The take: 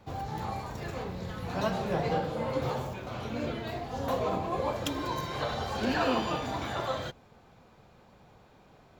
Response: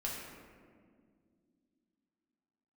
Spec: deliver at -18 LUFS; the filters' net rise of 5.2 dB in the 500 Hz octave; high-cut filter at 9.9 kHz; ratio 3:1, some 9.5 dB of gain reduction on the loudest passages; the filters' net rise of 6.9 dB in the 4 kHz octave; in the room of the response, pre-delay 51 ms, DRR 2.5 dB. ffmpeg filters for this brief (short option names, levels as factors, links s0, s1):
-filter_complex "[0:a]lowpass=9900,equalizer=f=500:t=o:g=6,equalizer=f=4000:t=o:g=8.5,acompressor=threshold=0.02:ratio=3,asplit=2[s0][s1];[1:a]atrim=start_sample=2205,adelay=51[s2];[s1][s2]afir=irnorm=-1:irlink=0,volume=0.596[s3];[s0][s3]amix=inputs=2:normalize=0,volume=5.96"